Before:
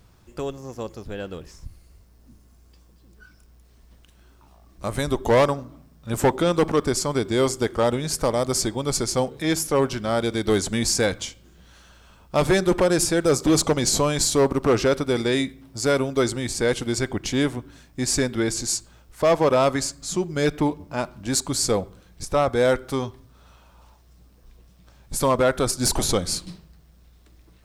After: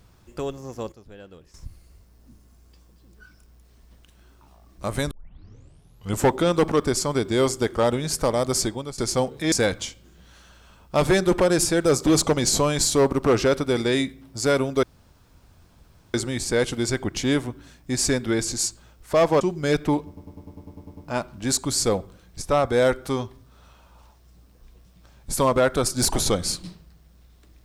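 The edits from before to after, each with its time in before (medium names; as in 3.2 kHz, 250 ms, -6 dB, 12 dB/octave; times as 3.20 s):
0.92–1.54 s: gain -11.5 dB
5.11 s: tape start 1.12 s
8.65–8.98 s: fade out, to -20 dB
9.52–10.92 s: delete
16.23 s: insert room tone 1.31 s
19.50–20.14 s: delete
20.80 s: stutter 0.10 s, 10 plays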